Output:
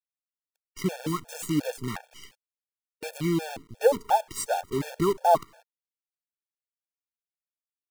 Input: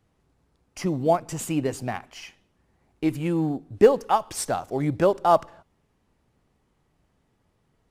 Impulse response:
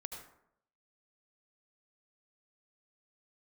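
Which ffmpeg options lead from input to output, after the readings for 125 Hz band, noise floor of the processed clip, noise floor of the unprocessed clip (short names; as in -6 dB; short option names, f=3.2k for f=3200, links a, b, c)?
-4.0 dB, under -85 dBFS, -70 dBFS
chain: -af "acrusher=bits=6:dc=4:mix=0:aa=0.000001,afftfilt=real='re*gt(sin(2*PI*2.8*pts/sr)*(1-2*mod(floor(b*sr/1024/460),2)),0)':imag='im*gt(sin(2*PI*2.8*pts/sr)*(1-2*mod(floor(b*sr/1024/460),2)),0)':win_size=1024:overlap=0.75"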